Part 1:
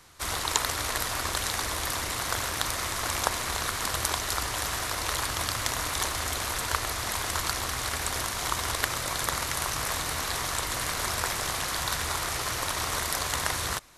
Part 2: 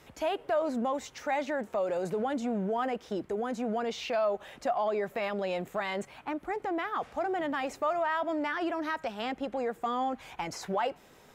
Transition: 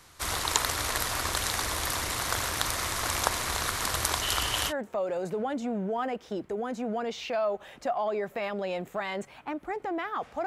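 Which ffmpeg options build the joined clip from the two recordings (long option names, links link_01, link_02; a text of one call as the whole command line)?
ffmpeg -i cue0.wav -i cue1.wav -filter_complex "[0:a]asettb=1/sr,asplit=3[link_01][link_02][link_03];[link_01]atrim=end=4.224[link_04];[link_02]atrim=start=4.22:end=4.73,asetpts=PTS-STARTPTS,afade=type=in:duration=0.004:curve=qsin,afade=type=out:start_time=0.506:duration=0.004:curve=qsin,equalizer=frequency=3000:width=5.5:gain=13.5[link_05];[link_03]atrim=start=4.726[link_06];[link_04][link_05]acrossfade=duration=0.004:curve1=hsin:curve2=qsin[link_07];[link_07][link_06]acrossfade=duration=0.004:curve1=qsin:curve2=hsin,apad=whole_dur=10.46,atrim=end=10.46,atrim=end=4.73,asetpts=PTS-STARTPTS[link_08];[1:a]atrim=start=1.47:end=7.26,asetpts=PTS-STARTPTS[link_09];[link_08][link_09]acrossfade=duration=0.06:curve1=tri:curve2=tri" out.wav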